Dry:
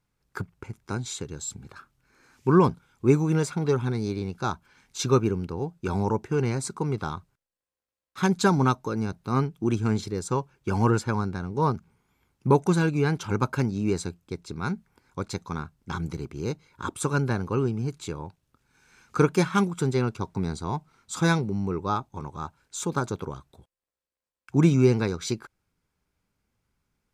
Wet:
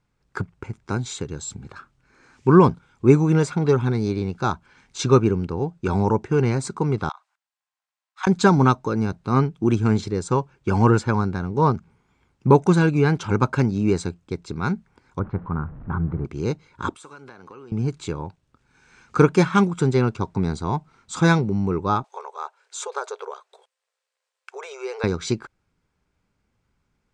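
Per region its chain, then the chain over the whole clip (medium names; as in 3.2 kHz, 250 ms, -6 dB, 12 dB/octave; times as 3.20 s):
7.09–8.27 s: steep high-pass 700 Hz 48 dB/octave + slow attack 114 ms
15.19–16.25 s: jump at every zero crossing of -40 dBFS + four-pole ladder low-pass 1.7 kHz, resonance 35% + bass shelf 260 Hz +11.5 dB
16.95–17.72 s: frequency weighting A + compression 8:1, threshold -38 dBFS + feedback comb 99 Hz, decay 0.51 s, harmonics odd, mix 50%
22.04–25.04 s: compression 2:1, threshold -27 dBFS + brick-wall FIR high-pass 390 Hz + tape noise reduction on one side only encoder only
whole clip: Chebyshev low-pass 8.5 kHz, order 3; treble shelf 6.3 kHz -8 dB; trim +5.5 dB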